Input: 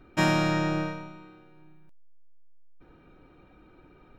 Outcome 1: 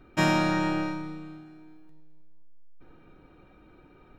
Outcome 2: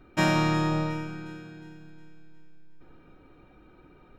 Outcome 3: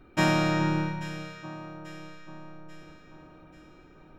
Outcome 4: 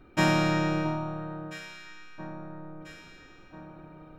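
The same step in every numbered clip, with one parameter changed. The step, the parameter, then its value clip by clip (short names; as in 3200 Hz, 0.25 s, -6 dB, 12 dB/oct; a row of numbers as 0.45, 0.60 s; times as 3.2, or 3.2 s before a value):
echo with dull and thin repeats by turns, time: 0.106, 0.18, 0.419, 0.67 s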